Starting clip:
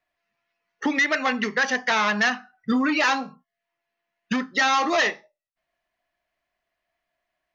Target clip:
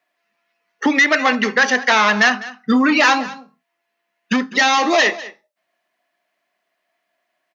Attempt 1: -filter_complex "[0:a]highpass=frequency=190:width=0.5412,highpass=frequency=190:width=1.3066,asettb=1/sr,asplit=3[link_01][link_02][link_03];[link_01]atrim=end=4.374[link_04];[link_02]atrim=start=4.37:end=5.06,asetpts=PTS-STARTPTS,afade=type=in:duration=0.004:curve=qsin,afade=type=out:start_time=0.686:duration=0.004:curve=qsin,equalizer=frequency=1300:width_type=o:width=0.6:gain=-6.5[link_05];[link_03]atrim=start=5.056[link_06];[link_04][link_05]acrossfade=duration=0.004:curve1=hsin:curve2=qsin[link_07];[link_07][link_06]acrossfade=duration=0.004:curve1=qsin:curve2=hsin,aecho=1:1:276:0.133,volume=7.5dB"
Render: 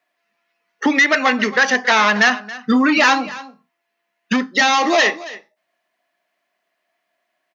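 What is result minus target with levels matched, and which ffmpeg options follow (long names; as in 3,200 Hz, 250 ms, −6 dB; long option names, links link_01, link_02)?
echo 75 ms late
-filter_complex "[0:a]highpass=frequency=190:width=0.5412,highpass=frequency=190:width=1.3066,asettb=1/sr,asplit=3[link_01][link_02][link_03];[link_01]atrim=end=4.374[link_04];[link_02]atrim=start=4.37:end=5.06,asetpts=PTS-STARTPTS,afade=type=in:duration=0.004:curve=qsin,afade=type=out:start_time=0.686:duration=0.004:curve=qsin,equalizer=frequency=1300:width_type=o:width=0.6:gain=-6.5[link_05];[link_03]atrim=start=5.056[link_06];[link_04][link_05]acrossfade=duration=0.004:curve1=hsin:curve2=qsin[link_07];[link_07][link_06]acrossfade=duration=0.004:curve1=qsin:curve2=hsin,aecho=1:1:201:0.133,volume=7.5dB"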